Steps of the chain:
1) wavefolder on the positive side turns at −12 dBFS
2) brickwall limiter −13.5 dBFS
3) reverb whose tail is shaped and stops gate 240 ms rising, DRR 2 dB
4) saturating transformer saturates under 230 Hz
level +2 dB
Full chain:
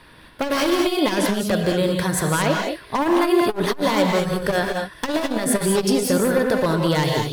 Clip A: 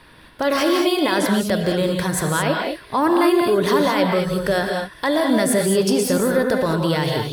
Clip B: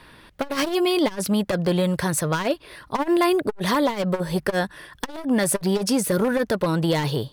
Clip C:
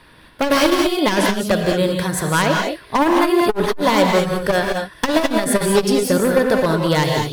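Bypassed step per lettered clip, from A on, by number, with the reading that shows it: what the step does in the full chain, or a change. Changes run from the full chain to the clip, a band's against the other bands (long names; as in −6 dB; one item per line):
1, distortion level −8 dB
3, change in momentary loudness spread +3 LU
2, average gain reduction 2.0 dB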